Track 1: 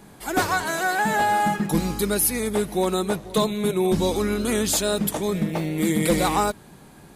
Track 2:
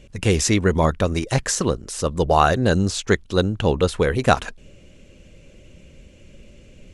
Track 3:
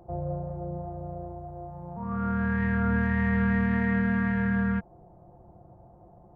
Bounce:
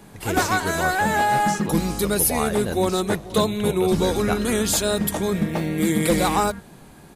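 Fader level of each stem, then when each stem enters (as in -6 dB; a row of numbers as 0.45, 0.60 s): +1.0, -10.5, -9.0 dB; 0.00, 0.00, 1.80 s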